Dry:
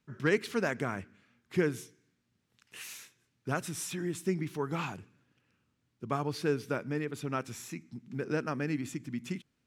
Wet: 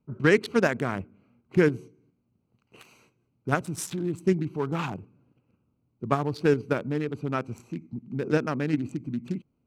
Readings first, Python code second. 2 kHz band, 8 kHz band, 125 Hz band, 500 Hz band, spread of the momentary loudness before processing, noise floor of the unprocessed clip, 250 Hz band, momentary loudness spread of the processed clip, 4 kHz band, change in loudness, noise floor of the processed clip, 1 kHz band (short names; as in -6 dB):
+6.0 dB, +0.5 dB, +7.0 dB, +7.5 dB, 14 LU, -78 dBFS, +7.0 dB, 15 LU, +3.0 dB, +7.0 dB, -74 dBFS, +6.0 dB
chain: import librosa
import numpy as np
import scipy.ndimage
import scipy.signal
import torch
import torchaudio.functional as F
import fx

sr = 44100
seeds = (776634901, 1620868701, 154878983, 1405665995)

p1 = fx.wiener(x, sr, points=25)
p2 = fx.level_steps(p1, sr, step_db=15)
p3 = p1 + F.gain(torch.from_numpy(p2), 1.0).numpy()
y = F.gain(torch.from_numpy(p3), 3.5).numpy()